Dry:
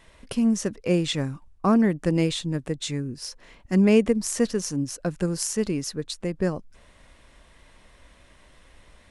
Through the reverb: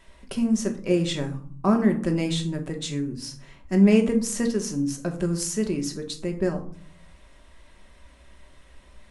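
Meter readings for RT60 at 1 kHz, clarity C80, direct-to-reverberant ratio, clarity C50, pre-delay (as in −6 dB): 0.50 s, 15.5 dB, 3.0 dB, 11.5 dB, 3 ms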